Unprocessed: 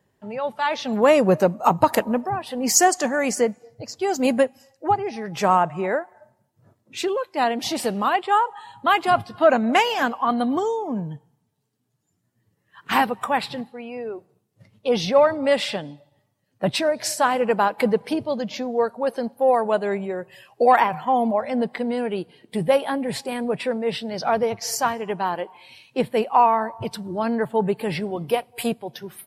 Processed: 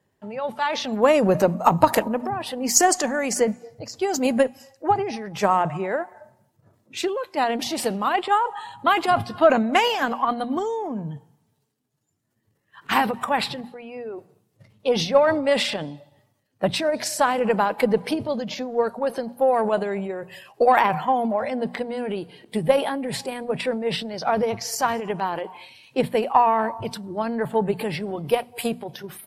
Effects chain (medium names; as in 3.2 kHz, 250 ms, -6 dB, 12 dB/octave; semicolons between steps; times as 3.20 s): transient shaper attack +5 dB, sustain +9 dB; hum notches 60/120/180/240 Hz; Chebyshev shaper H 4 -33 dB, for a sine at 2.5 dBFS; trim -3.5 dB